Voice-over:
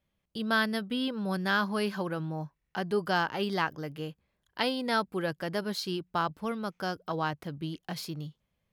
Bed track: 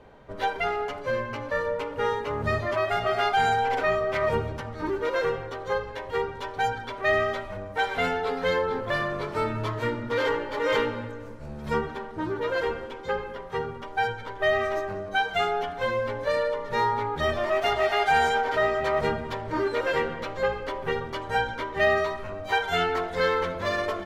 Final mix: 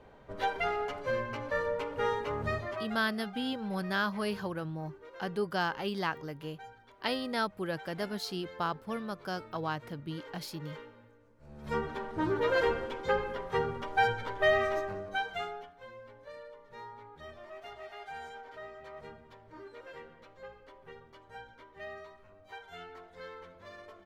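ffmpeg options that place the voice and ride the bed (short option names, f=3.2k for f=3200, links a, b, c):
-filter_complex "[0:a]adelay=2450,volume=-3.5dB[a];[1:a]volume=18.5dB,afade=t=out:st=2.29:d=0.75:silence=0.112202,afade=t=in:st=11.35:d=0.88:silence=0.0707946,afade=t=out:st=14.21:d=1.51:silence=0.0794328[b];[a][b]amix=inputs=2:normalize=0"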